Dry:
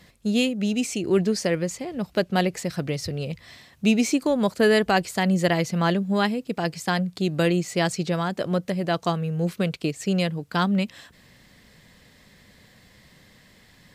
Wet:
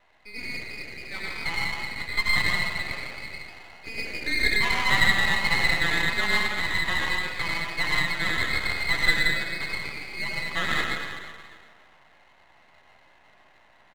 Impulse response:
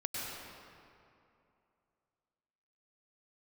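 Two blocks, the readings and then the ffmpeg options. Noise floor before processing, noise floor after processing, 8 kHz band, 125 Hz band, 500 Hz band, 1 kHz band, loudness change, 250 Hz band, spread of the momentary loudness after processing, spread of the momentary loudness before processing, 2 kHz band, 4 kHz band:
-55 dBFS, -57 dBFS, -4.5 dB, -10.5 dB, -15.0 dB, -3.5 dB, -0.5 dB, -16.0 dB, 15 LU, 8 LU, +8.0 dB, +4.0 dB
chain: -filter_complex "[0:a]lowshelf=f=490:t=q:w=3:g=-8.5,asplit=2[a][b];[b]highpass=f=720:p=1,volume=12dB,asoftclip=type=tanh:threshold=-4dB[c];[a][c]amix=inputs=2:normalize=0,lowpass=f=1.7k:p=1,volume=-6dB,lowpass=f=2.3k:t=q:w=0.5098,lowpass=f=2.3k:t=q:w=0.6013,lowpass=f=2.3k:t=q:w=0.9,lowpass=f=2.3k:t=q:w=2.563,afreqshift=-2700,aeval=exprs='0.596*(cos(1*acos(clip(val(0)/0.596,-1,1)))-cos(1*PI/2))+0.0133*(cos(7*acos(clip(val(0)/0.596,-1,1)))-cos(7*PI/2))':c=same,asplit=2[d][e];[e]adelay=13,volume=-6.5dB[f];[d][f]amix=inputs=2:normalize=0[g];[1:a]atrim=start_sample=2205,asetrate=61740,aresample=44100[h];[g][h]afir=irnorm=-1:irlink=0,aeval=exprs='max(val(0),0)':c=same"

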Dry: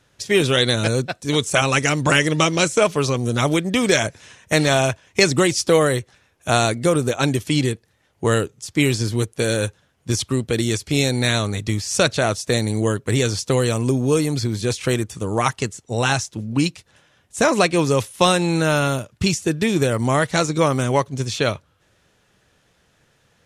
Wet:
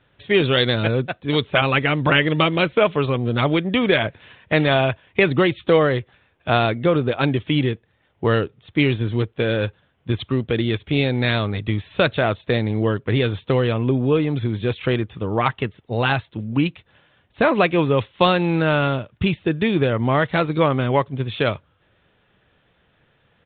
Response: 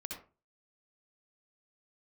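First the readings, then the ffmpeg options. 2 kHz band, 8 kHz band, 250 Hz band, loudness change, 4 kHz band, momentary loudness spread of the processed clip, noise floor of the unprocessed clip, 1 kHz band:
0.0 dB, under -40 dB, 0.0 dB, -0.5 dB, -2.5 dB, 7 LU, -62 dBFS, 0.0 dB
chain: -af "aresample=8000,aresample=44100"

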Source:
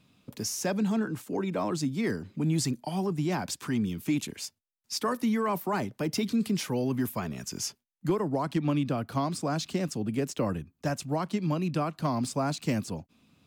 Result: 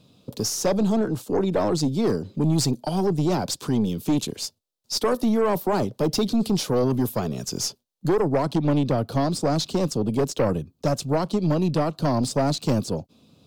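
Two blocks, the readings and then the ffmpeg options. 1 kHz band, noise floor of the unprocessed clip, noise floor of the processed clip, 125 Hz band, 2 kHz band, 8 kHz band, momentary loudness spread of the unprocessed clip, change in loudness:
+5.0 dB, -77 dBFS, -70 dBFS, +6.5 dB, +1.0 dB, +5.5 dB, 6 LU, +6.5 dB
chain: -af "equalizer=f=125:t=o:w=1:g=4,equalizer=f=500:t=o:w=1:g=9,equalizer=f=2k:t=o:w=1:g=-11,equalizer=f=4k:t=o:w=1:g=7,aeval=exprs='0.266*(cos(1*acos(clip(val(0)/0.266,-1,1)))-cos(1*PI/2))+0.0376*(cos(5*acos(clip(val(0)/0.266,-1,1)))-cos(5*PI/2))+0.0237*(cos(6*acos(clip(val(0)/0.266,-1,1)))-cos(6*PI/2))':c=same"

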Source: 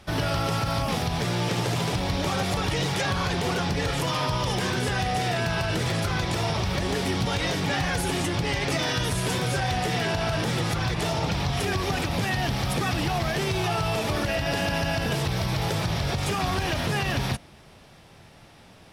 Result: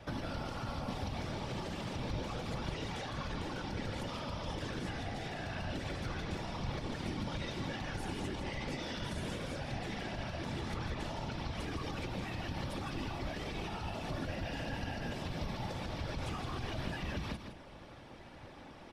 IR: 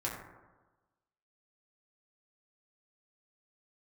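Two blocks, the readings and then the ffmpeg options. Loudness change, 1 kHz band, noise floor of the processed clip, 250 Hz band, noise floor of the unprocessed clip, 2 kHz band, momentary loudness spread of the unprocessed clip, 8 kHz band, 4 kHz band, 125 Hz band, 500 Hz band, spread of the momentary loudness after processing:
-14.0 dB, -14.5 dB, -52 dBFS, -11.5 dB, -51 dBFS, -15.0 dB, 1 LU, -19.0 dB, -15.5 dB, -14.0 dB, -14.0 dB, 1 LU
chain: -filter_complex "[0:a]acompressor=threshold=-32dB:ratio=6,aecho=1:1:3.5:0.58,afftfilt=real='hypot(re,im)*cos(2*PI*random(0))':imag='hypot(re,im)*sin(2*PI*random(1))':win_size=512:overlap=0.75,acrossover=split=220|3000[a][b][c];[b]acompressor=threshold=-45dB:ratio=6[d];[a][d][c]amix=inputs=3:normalize=0,aemphasis=mode=reproduction:type=75kf,asplit=2[e][f];[f]aecho=0:1:163:0.398[g];[e][g]amix=inputs=2:normalize=0,volume=4.5dB"

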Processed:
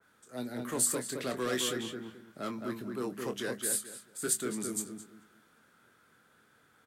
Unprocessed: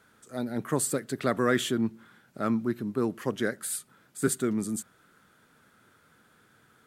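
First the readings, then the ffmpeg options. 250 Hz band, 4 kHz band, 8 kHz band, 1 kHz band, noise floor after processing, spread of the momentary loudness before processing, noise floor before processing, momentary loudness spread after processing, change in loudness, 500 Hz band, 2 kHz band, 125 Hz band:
-8.5 dB, +0.5 dB, +2.0 dB, -6.5 dB, -66 dBFS, 10 LU, -63 dBFS, 15 LU, -4.0 dB, -6.0 dB, -5.5 dB, -10.5 dB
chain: -filter_complex "[0:a]lowshelf=f=230:g=-5.5,bandreject=f=104.6:t=h:w=4,bandreject=f=209.2:t=h:w=4,acrossover=split=340|460|4500[a][b][c][d];[a]alimiter=level_in=7dB:limit=-24dB:level=0:latency=1,volume=-7dB[e];[c]asoftclip=type=tanh:threshold=-31.5dB[f];[e][b][f][d]amix=inputs=4:normalize=0,asplit=2[g][h];[h]adelay=24,volume=-8.5dB[i];[g][i]amix=inputs=2:normalize=0,asplit=2[j][k];[k]adelay=217,lowpass=f=2.2k:p=1,volume=-4dB,asplit=2[l][m];[m]adelay=217,lowpass=f=2.2k:p=1,volume=0.26,asplit=2[n][o];[o]adelay=217,lowpass=f=2.2k:p=1,volume=0.26,asplit=2[p][q];[q]adelay=217,lowpass=f=2.2k:p=1,volume=0.26[r];[j][l][n][p][r]amix=inputs=5:normalize=0,adynamicequalizer=threshold=0.00398:dfrequency=2300:dqfactor=0.7:tfrequency=2300:tqfactor=0.7:attack=5:release=100:ratio=0.375:range=3:mode=boostabove:tftype=highshelf,volume=-4.5dB"

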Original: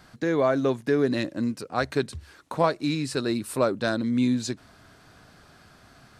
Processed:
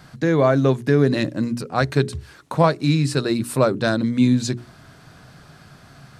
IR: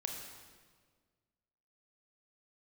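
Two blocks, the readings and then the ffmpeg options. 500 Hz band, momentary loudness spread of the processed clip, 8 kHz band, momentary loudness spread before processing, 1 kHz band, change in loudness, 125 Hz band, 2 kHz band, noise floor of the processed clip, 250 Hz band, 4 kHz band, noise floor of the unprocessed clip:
+5.0 dB, 9 LU, +5.0 dB, 9 LU, +5.0 dB, +6.0 dB, +12.5 dB, +5.0 dB, -48 dBFS, +6.0 dB, +5.0 dB, -55 dBFS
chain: -af "equalizer=f=140:t=o:w=0.68:g=10,bandreject=f=60:t=h:w=6,bandreject=f=120:t=h:w=6,bandreject=f=180:t=h:w=6,bandreject=f=240:t=h:w=6,bandreject=f=300:t=h:w=6,bandreject=f=360:t=h:w=6,bandreject=f=420:t=h:w=6,volume=5dB"

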